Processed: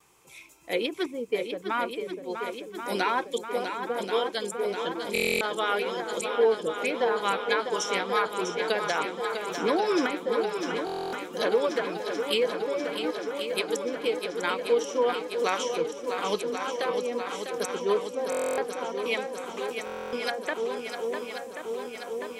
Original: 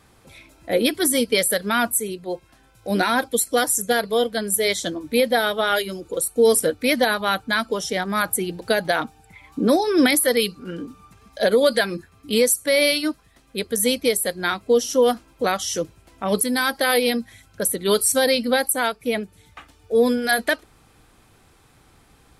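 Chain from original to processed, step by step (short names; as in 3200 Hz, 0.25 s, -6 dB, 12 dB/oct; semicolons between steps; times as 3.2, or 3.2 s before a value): RIAA curve recording; treble ducked by the level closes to 570 Hz, closed at -11 dBFS; gate with hold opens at -44 dBFS; ripple EQ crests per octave 0.73, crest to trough 8 dB; swung echo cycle 1.083 s, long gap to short 1.5:1, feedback 72%, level -7.5 dB; stuck buffer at 5.13/10.85/18.3/19.85, samples 1024, times 11; mismatched tape noise reduction decoder only; gain -5 dB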